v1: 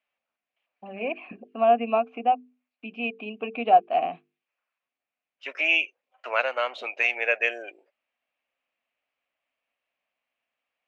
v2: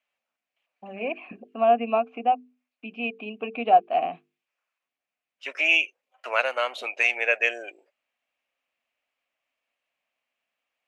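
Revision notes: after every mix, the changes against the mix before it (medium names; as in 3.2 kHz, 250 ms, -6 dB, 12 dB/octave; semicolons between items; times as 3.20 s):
second voice: remove distance through air 120 m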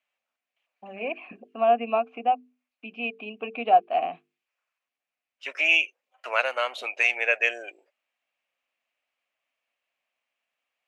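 master: add bass shelf 340 Hz -5.5 dB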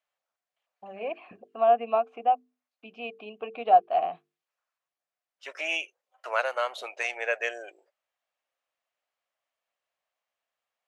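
first voice: remove distance through air 130 m; master: add fifteen-band graphic EQ 100 Hz +4 dB, 250 Hz -10 dB, 2.5 kHz -11 dB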